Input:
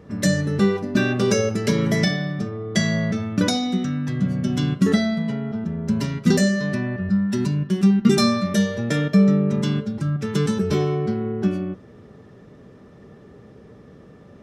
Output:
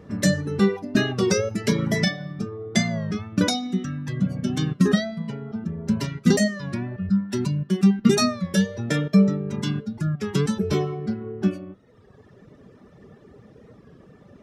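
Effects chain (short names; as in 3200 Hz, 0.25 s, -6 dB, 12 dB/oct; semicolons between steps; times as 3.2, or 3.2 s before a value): reverb removal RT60 1.2 s; record warp 33 1/3 rpm, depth 100 cents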